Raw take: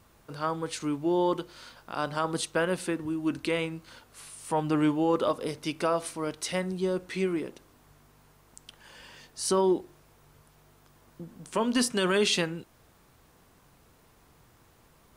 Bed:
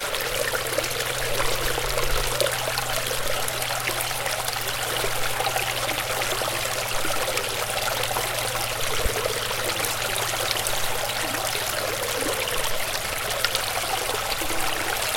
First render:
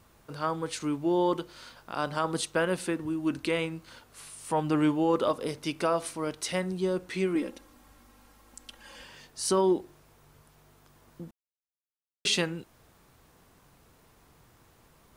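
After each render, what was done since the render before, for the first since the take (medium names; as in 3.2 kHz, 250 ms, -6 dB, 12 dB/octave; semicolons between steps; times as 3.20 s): 7.35–9.04 s: comb 3.7 ms, depth 91%; 11.31–12.25 s: mute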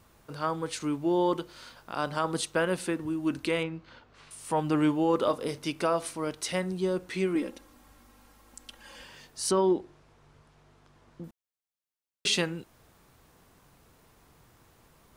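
3.63–4.31 s: distance through air 190 m; 5.16–5.69 s: doubling 28 ms -13 dB; 9.51–11.24 s: distance through air 80 m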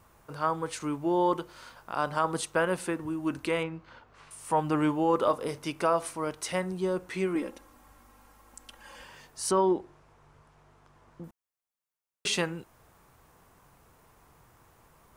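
graphic EQ 250/1000/4000 Hz -3/+4/-5 dB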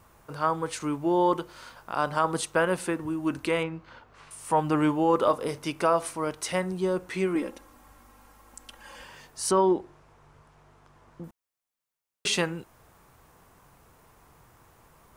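trim +2.5 dB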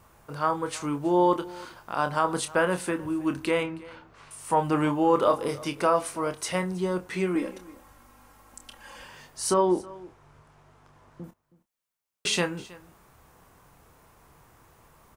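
doubling 28 ms -9 dB; delay 320 ms -21 dB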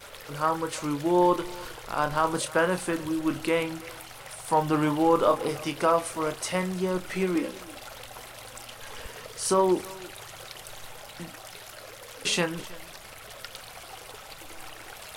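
add bed -18 dB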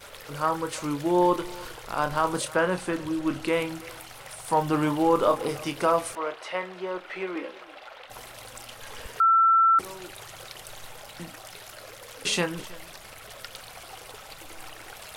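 2.54–3.51 s: treble shelf 7.8 kHz -> 12 kHz -10.5 dB; 6.15–8.10 s: three-band isolator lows -21 dB, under 370 Hz, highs -22 dB, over 3.8 kHz; 9.20–9.79 s: bleep 1.34 kHz -15.5 dBFS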